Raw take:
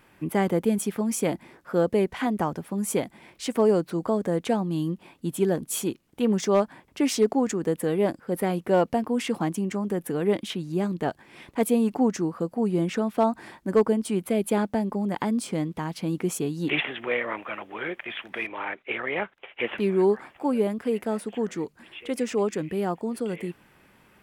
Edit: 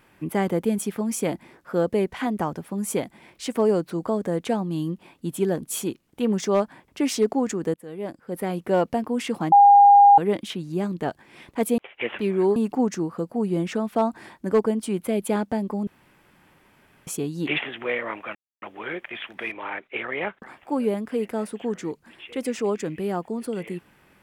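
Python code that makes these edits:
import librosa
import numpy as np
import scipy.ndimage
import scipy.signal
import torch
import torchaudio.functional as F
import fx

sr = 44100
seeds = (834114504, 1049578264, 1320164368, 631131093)

y = fx.edit(x, sr, fx.fade_in_from(start_s=7.74, length_s=0.93, floor_db=-21.5),
    fx.bleep(start_s=9.52, length_s=0.66, hz=809.0, db=-8.5),
    fx.room_tone_fill(start_s=15.09, length_s=1.2),
    fx.insert_silence(at_s=17.57, length_s=0.27),
    fx.move(start_s=19.37, length_s=0.78, to_s=11.78), tone=tone)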